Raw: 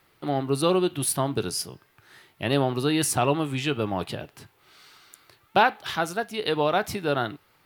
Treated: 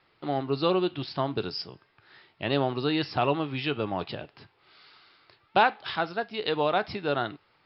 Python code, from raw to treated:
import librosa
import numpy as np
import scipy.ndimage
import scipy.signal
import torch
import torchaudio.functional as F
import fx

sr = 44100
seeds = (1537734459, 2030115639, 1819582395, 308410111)

y = scipy.signal.sosfilt(scipy.signal.cheby1(10, 1.0, 5300.0, 'lowpass', fs=sr, output='sos'), x)
y = fx.low_shelf(y, sr, hz=200.0, db=-3.5)
y = y * librosa.db_to_amplitude(-1.5)